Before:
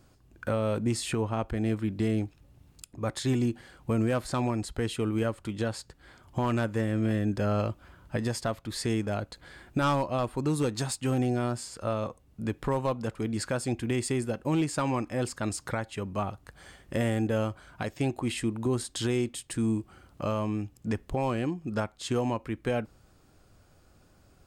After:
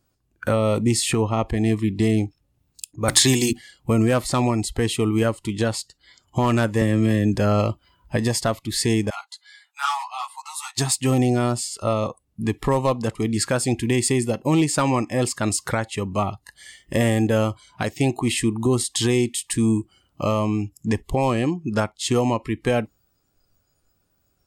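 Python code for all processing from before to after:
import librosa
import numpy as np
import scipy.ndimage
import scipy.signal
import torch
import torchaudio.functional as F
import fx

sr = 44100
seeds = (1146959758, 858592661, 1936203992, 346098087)

y = fx.chain(x, sr, fx.high_shelf(hz=2400.0, db=11.5),
    fx.hum_notches(base_hz=60, count=5),
    fx.band_squash(depth_pct=70), at=(3.08, 3.53))
y = fx.chain(y, sr, fx.peak_eq(hz=720.0, db=-4.5, octaves=0.28),
    fx.band_squash(depth_pct=70), at=(6.81, 7.35))
y = fx.chain(y, sr, fx.cheby1_highpass(hz=790.0, order=5),
    fx.ensemble(), at=(9.1, 10.78))
y = fx.noise_reduce_blind(y, sr, reduce_db=19)
y = fx.high_shelf(y, sr, hz=4200.0, db=5.5)
y = y * 10.0 ** (8.0 / 20.0)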